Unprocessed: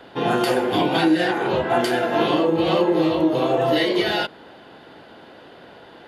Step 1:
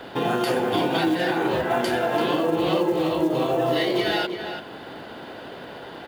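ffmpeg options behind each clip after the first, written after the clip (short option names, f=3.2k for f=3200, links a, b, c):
-filter_complex "[0:a]acompressor=threshold=-33dB:ratio=2,acrusher=bits=7:mode=log:mix=0:aa=0.000001,asplit=2[a][b];[b]adelay=338.2,volume=-7dB,highshelf=f=4k:g=-7.61[c];[a][c]amix=inputs=2:normalize=0,volume=5.5dB"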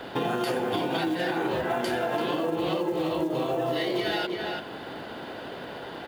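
-af "acompressor=threshold=-24dB:ratio=6"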